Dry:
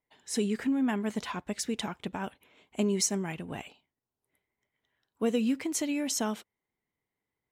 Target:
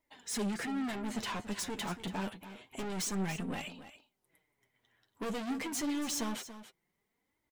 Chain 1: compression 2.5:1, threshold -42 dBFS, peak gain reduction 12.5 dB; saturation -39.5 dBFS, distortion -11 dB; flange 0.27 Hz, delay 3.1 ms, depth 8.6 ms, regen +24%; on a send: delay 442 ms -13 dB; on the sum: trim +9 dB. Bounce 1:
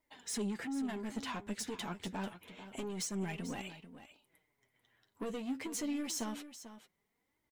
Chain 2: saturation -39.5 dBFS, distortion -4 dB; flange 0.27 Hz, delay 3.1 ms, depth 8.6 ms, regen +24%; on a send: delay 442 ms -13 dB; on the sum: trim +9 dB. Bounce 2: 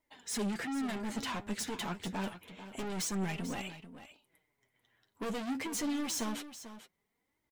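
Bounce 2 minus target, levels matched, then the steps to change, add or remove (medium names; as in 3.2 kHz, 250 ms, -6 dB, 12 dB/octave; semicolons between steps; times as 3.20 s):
echo 159 ms late
change: delay 283 ms -13 dB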